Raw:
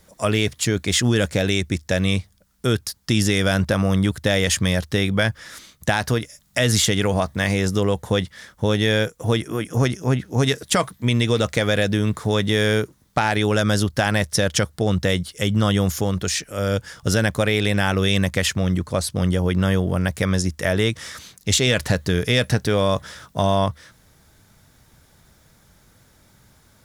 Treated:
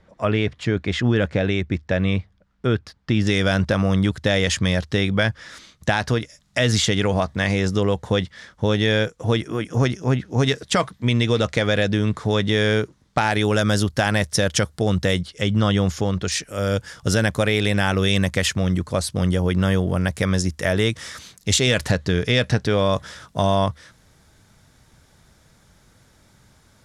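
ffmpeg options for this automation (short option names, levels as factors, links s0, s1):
-af "asetnsamples=n=441:p=0,asendcmd='3.27 lowpass f 6100;13.18 lowpass f 11000;15.21 lowpass f 5500;16.32 lowpass f 11000;21.91 lowpass f 5900;22.93 lowpass f 9800',lowpass=2500"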